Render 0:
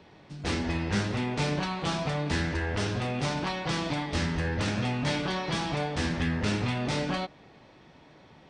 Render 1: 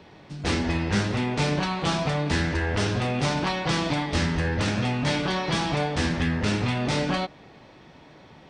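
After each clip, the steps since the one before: gain riding 0.5 s; trim +4.5 dB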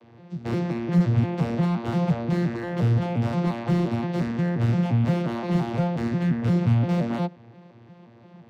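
vocoder on a broken chord bare fifth, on A#2, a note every 175 ms; slew-rate limiter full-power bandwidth 28 Hz; trim +3.5 dB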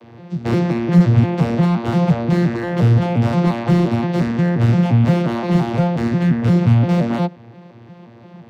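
gain riding within 3 dB 2 s; trim +7.5 dB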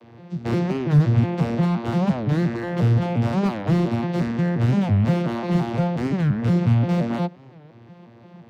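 warped record 45 rpm, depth 250 cents; trim -5 dB

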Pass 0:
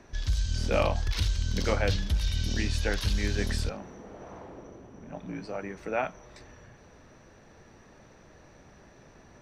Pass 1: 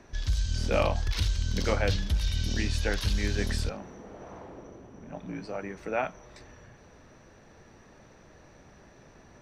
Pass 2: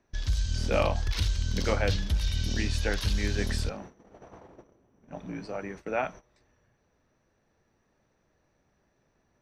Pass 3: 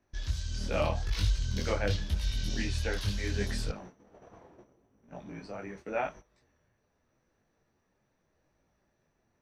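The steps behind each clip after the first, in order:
no audible change
gate -43 dBFS, range -17 dB
detune thickener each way 28 cents

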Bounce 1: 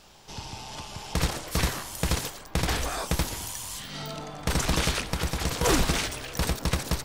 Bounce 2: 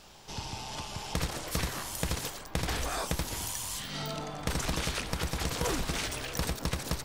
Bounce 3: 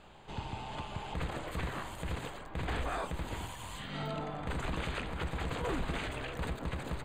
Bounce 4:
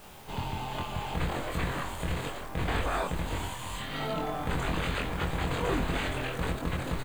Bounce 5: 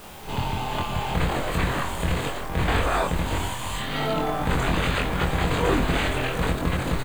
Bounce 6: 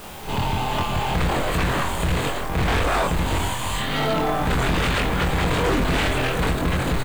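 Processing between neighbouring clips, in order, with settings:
compression 6:1, threshold -28 dBFS, peak gain reduction 10 dB
peak limiter -23.5 dBFS, peak gain reduction 9.5 dB; boxcar filter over 8 samples
added noise white -62 dBFS; doubling 23 ms -2.5 dB; trim +4 dB
reverse echo 56 ms -10.5 dB; trim +7 dB
hard clipper -21.5 dBFS, distortion -11 dB; trim +4.5 dB

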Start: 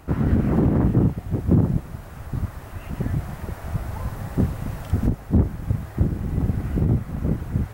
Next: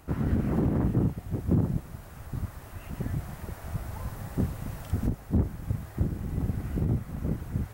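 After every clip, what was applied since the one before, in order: treble shelf 4.4 kHz +6 dB; trim -7 dB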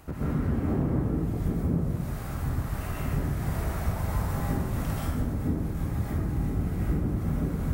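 compression 10:1, threshold -33 dBFS, peak gain reduction 14.5 dB; plate-style reverb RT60 1.3 s, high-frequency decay 0.55×, pre-delay 115 ms, DRR -8 dB; trim +1.5 dB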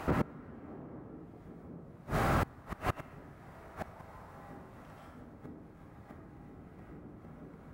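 inverted gate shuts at -22 dBFS, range -30 dB; overdrive pedal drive 22 dB, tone 1.2 kHz, clips at -21 dBFS; trim +3 dB

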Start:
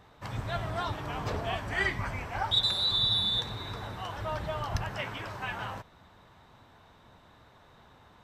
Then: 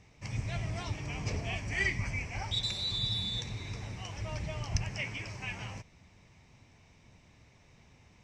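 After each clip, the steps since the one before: FFT filter 150 Hz 0 dB, 1.5 kHz -15 dB, 2.3 kHz +5 dB, 3.7 kHz -10 dB, 5.6 kHz +8 dB, 8.7 kHz -2 dB, 13 kHz -20 dB; trim +1 dB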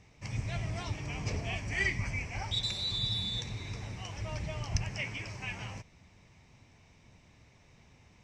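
no audible change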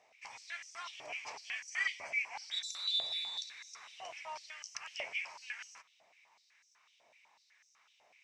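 step-sequenced high-pass 8 Hz 650–6000 Hz; trim -6.5 dB

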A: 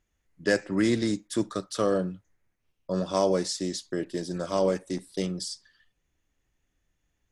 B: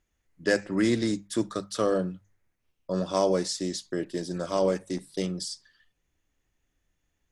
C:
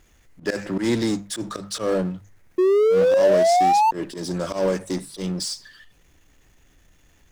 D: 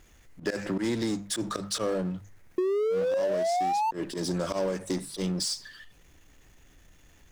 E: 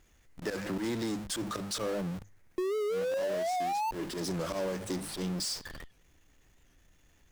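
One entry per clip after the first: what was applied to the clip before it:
hum notches 50/100/150/200 Hz
slow attack 113 ms; painted sound rise, 2.58–3.91 s, 360–910 Hz -19 dBFS; power-law waveshaper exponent 0.7
compression 6:1, threshold -26 dBFS, peak gain reduction 12 dB
in parallel at -6 dB: Schmitt trigger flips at -43.5 dBFS; on the sum: warped record 78 rpm, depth 100 cents; trim -7 dB

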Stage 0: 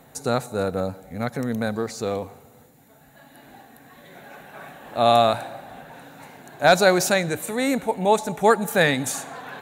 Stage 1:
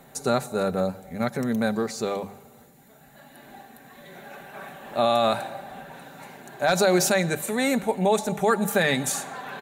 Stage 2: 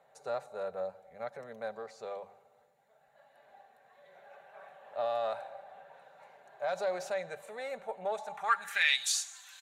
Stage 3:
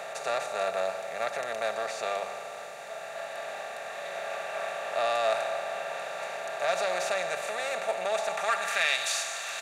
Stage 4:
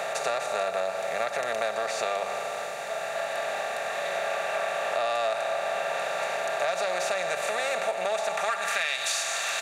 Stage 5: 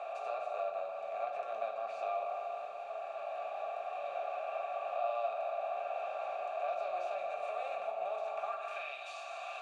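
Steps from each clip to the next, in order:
comb 5.1 ms, depth 43%; peak limiter -11 dBFS, peak gain reduction 8.5 dB; hum notches 50/100/150/200 Hz
single-diode clipper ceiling -14 dBFS; amplifier tone stack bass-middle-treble 10-0-10; band-pass sweep 540 Hz -> 6.7 kHz, 8.12–9.33 s; trim +7.5 dB
spectral levelling over time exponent 0.4; small resonant body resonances 670/2700 Hz, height 12 dB, ringing for 65 ms; trim -3 dB
compression 6:1, threshold -32 dBFS, peak gain reduction 10.5 dB; trim +7.5 dB
vowel filter a; reverberation, pre-delay 5 ms, DRR 1 dB; trim -4.5 dB

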